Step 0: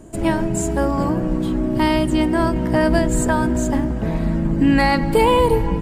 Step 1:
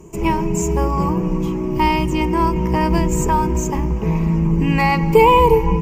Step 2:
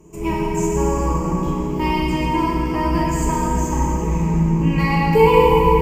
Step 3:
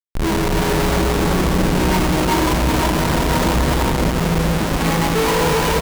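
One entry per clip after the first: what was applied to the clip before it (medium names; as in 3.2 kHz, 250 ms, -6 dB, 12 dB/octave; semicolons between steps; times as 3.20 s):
rippled EQ curve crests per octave 0.77, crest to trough 15 dB; trim -1 dB
plate-style reverb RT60 3.7 s, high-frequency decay 0.75×, DRR -5 dB; trim -7.5 dB
Schmitt trigger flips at -24.5 dBFS; on a send: delay 374 ms -4 dB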